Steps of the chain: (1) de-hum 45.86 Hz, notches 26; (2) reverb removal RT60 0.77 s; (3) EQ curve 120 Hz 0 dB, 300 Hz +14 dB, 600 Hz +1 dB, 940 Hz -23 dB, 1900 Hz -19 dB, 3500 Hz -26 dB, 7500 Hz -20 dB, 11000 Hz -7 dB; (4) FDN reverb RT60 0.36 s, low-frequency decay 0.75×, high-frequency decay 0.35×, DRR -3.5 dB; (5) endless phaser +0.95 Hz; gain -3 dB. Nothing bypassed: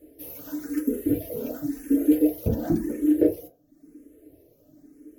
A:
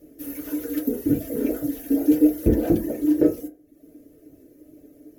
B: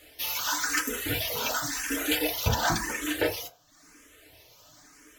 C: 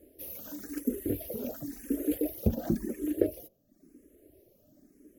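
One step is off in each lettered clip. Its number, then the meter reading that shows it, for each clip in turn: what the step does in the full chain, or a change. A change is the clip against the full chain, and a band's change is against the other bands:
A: 5, loudness change +2.5 LU; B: 3, momentary loudness spread change -10 LU; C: 4, crest factor change +6.0 dB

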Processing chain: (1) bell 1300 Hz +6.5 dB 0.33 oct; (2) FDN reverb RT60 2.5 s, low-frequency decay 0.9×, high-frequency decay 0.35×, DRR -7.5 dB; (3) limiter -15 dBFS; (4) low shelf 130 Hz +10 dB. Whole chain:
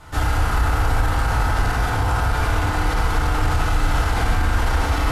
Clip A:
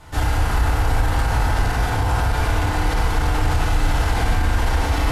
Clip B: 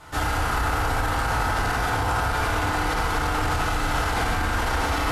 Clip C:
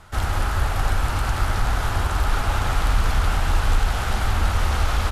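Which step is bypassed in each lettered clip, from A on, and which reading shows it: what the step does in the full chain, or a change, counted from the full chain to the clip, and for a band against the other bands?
1, 2 kHz band -1.5 dB; 4, 125 Hz band -7.0 dB; 2, 4 kHz band +3.5 dB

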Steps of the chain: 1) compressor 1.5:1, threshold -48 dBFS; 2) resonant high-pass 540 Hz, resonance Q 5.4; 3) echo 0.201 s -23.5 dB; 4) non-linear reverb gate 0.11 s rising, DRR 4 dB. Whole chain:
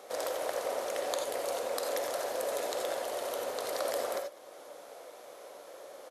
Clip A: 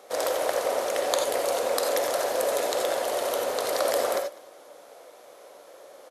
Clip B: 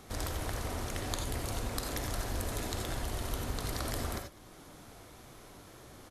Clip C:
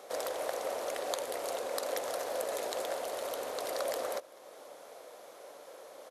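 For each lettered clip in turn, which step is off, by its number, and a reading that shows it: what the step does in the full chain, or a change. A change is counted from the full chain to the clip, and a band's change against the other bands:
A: 1, mean gain reduction 5.5 dB; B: 2, 500 Hz band -10.0 dB; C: 4, crest factor change +2.0 dB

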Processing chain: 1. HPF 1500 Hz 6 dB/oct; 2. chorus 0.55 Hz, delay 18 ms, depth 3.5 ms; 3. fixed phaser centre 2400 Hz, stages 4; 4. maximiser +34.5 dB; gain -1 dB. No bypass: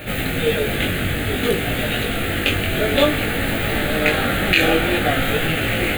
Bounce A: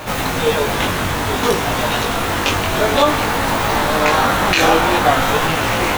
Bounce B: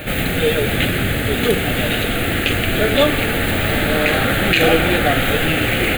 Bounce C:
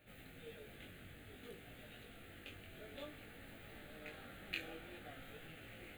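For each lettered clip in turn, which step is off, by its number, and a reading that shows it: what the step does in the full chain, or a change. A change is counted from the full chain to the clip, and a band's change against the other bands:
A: 3, 1 kHz band +9.0 dB; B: 2, crest factor change -2.5 dB; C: 4, crest factor change +10.5 dB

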